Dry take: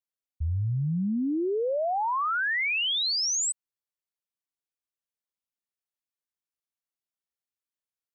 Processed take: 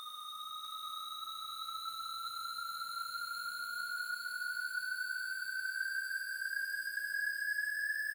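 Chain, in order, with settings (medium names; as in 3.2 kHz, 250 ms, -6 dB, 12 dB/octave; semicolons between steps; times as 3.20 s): spectral levelling over time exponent 0.6; peaking EQ 94 Hz -6 dB 0.21 oct; reverse; compression 5:1, threshold -39 dBFS, peak gain reduction 12.5 dB; reverse; waveshaping leveller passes 5; gain riding within 5 dB 2 s; static phaser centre 2.6 kHz, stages 4; small samples zeroed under -52.5 dBFS; Paulstretch 36×, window 0.05 s, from 2.26 s; feedback delay 648 ms, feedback 38%, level -4.5 dB; on a send at -4 dB: reverberation RT60 1.4 s, pre-delay 77 ms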